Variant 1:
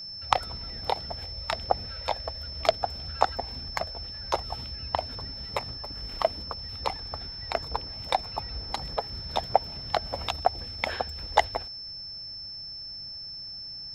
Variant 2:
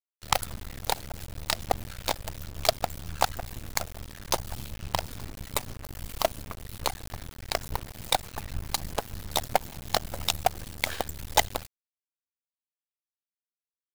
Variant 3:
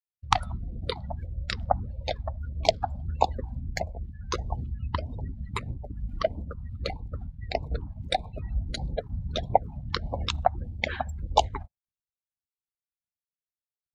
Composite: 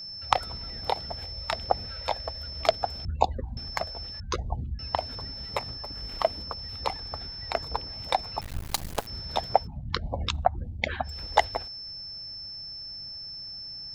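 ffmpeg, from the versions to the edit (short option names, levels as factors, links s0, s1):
-filter_complex "[2:a]asplit=3[s0][s1][s2];[0:a]asplit=5[s3][s4][s5][s6][s7];[s3]atrim=end=3.052[s8];[s0]atrim=start=3.048:end=3.572[s9];[s4]atrim=start=3.568:end=4.202[s10];[s1]atrim=start=4.198:end=4.792[s11];[s5]atrim=start=4.788:end=8.412[s12];[1:a]atrim=start=8.408:end=9.072[s13];[s6]atrim=start=9.068:end=9.68[s14];[s2]atrim=start=9.58:end=11.13[s15];[s7]atrim=start=11.03[s16];[s8][s9]acrossfade=d=0.004:c1=hsin:c2=hsin[s17];[s17][s10]acrossfade=d=0.004:c1=hsin:c2=hsin[s18];[s18][s11]acrossfade=d=0.004:c1=hsin:c2=hsin[s19];[s19][s12]acrossfade=d=0.004:c1=hsin:c2=hsin[s20];[s20][s13]acrossfade=d=0.004:c1=hsin:c2=hsin[s21];[s21][s14]acrossfade=d=0.004:c1=hsin:c2=hsin[s22];[s22][s15]acrossfade=d=0.1:c1=tri:c2=tri[s23];[s23][s16]acrossfade=d=0.1:c1=tri:c2=tri"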